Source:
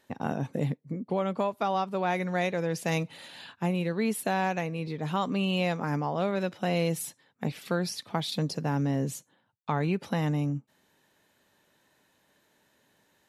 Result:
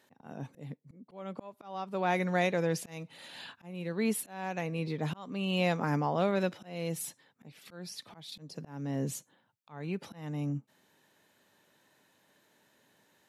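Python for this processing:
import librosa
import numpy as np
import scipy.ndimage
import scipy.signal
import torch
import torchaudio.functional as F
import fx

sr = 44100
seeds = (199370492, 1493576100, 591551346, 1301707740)

y = scipy.signal.sosfilt(scipy.signal.butter(2, 100.0, 'highpass', fs=sr, output='sos'), x)
y = fx.auto_swell(y, sr, attack_ms=532.0)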